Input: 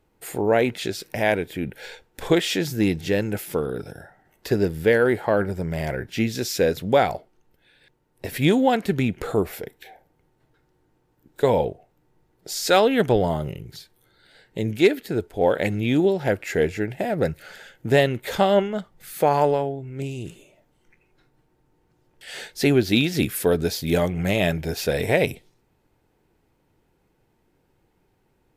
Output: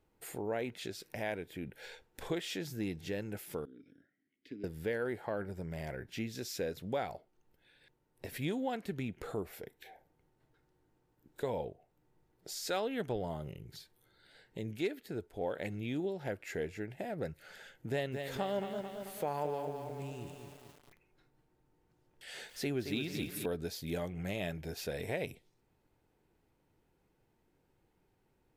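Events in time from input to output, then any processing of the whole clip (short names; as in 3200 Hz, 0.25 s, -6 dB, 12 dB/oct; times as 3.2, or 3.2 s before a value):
3.65–4.64 vowel filter i
17.9–23.46 lo-fi delay 0.22 s, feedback 55%, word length 7-bit, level -8 dB
whole clip: compressor 1.5:1, threshold -41 dBFS; gain -8 dB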